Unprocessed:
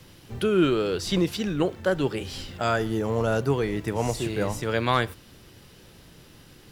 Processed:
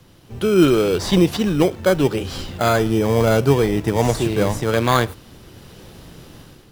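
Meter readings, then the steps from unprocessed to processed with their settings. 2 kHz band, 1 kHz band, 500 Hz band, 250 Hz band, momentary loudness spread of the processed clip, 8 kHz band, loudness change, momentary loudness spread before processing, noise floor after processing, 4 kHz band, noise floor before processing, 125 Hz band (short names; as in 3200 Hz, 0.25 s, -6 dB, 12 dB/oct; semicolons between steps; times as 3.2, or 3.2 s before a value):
+5.0 dB, +6.5 dB, +8.0 dB, +8.0 dB, 6 LU, +8.0 dB, +7.5 dB, 7 LU, -48 dBFS, +6.0 dB, -52 dBFS, +8.5 dB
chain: AGC gain up to 9.5 dB; in parallel at -4 dB: sample-and-hold 16×; on the sum: gain -3.5 dB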